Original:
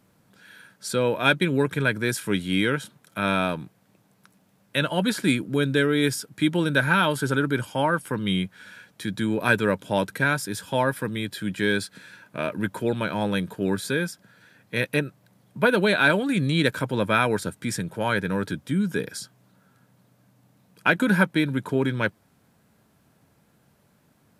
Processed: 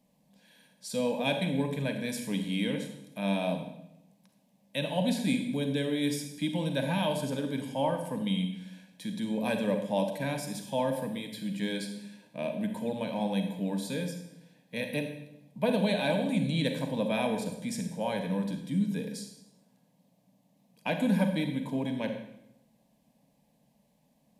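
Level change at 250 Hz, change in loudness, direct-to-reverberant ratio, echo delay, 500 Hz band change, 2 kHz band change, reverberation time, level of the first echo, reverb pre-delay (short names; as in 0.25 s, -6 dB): -4.5 dB, -7.0 dB, 5.0 dB, none, -6.0 dB, -15.0 dB, 0.85 s, none, 35 ms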